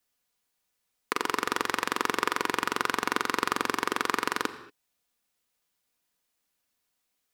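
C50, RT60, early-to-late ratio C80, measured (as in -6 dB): 12.5 dB, no single decay rate, 14.0 dB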